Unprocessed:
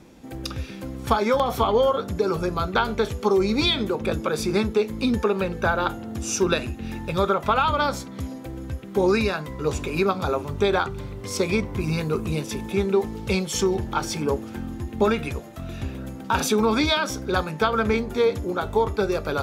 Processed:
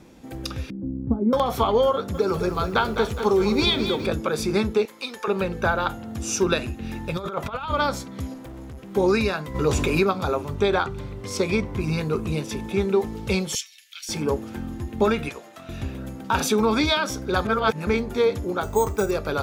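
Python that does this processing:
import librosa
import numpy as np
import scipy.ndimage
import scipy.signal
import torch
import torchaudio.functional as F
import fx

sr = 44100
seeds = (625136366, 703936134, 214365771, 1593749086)

y = fx.lowpass_res(x, sr, hz=260.0, q=2.2, at=(0.7, 1.33))
y = fx.echo_crushed(y, sr, ms=207, feedback_pct=55, bits=8, wet_db=-9, at=(1.93, 4.07))
y = fx.highpass(y, sr, hz=760.0, slope=12, at=(4.85, 5.28))
y = fx.peak_eq(y, sr, hz=370.0, db=-7.0, octaves=0.54, at=(5.78, 6.2))
y = fx.over_compress(y, sr, threshold_db=-25.0, ratio=-0.5, at=(7.15, 7.7), fade=0.02)
y = fx.clip_hard(y, sr, threshold_db=-36.0, at=(8.34, 8.91))
y = fx.env_flatten(y, sr, amount_pct=50, at=(9.54, 10.03), fade=0.02)
y = fx.high_shelf(y, sr, hz=9800.0, db=-6.0, at=(10.55, 12.82))
y = fx.steep_highpass(y, sr, hz=2200.0, slope=36, at=(13.55, 14.09))
y = fx.weighting(y, sr, curve='A', at=(15.29, 15.69))
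y = fx.resample_bad(y, sr, factor=6, down='filtered', up='hold', at=(18.63, 19.11))
y = fx.edit(y, sr, fx.reverse_span(start_s=17.45, length_s=0.42), tone=tone)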